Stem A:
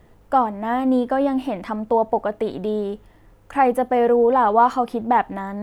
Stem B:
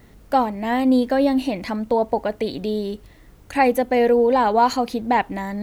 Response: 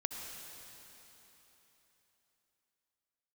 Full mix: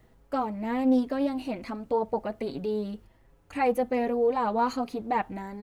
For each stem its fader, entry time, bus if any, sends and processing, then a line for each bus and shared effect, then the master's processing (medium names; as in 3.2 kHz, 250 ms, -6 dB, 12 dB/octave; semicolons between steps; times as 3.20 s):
-6.5 dB, 0.00 s, no send, endless flanger 5.9 ms +1.3 Hz
-1.5 dB, 0.00 s, no send, gate -38 dBFS, range -12 dB; auto duck -11 dB, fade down 0.30 s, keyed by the first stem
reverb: none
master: loudspeaker Doppler distortion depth 0.18 ms